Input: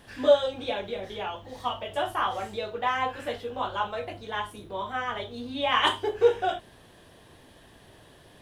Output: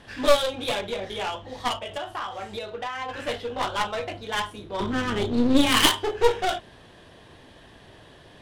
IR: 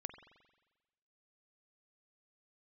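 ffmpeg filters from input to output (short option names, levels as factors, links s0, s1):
-filter_complex "[0:a]asplit=3[s0][s1][s2];[s0]afade=t=out:st=1.78:d=0.02[s3];[s1]acompressor=threshold=0.02:ratio=6,afade=t=in:st=1.78:d=0.02,afade=t=out:st=3.08:d=0.02[s4];[s2]afade=t=in:st=3.08:d=0.02[s5];[s3][s4][s5]amix=inputs=3:normalize=0,asettb=1/sr,asplit=3[s6][s7][s8];[s6]atrim=end=4.804[s9];[s7]atrim=start=4.8:end=5.86,asetpts=PTS-STARTPTS,afade=t=in:d=0.004:c=qsin,afade=t=out:st=1.056:d=0.004:c=qsin,lowshelf=f=470:t=q:w=3:g=12[s10];[s8]atrim=start=5.856[s11];[s9][s10]acrossfade=d=0.004:c1=hsin:c2=qsin[s12];[s12][s11]acrossfade=d=0.004:c1=qsin:c2=hsin,aeval=exprs='clip(val(0),-1,0.0282)':c=same,adynamicsmooth=sensitivity=5.5:basefreq=3200,crystalizer=i=3.5:c=0,volume=1.5"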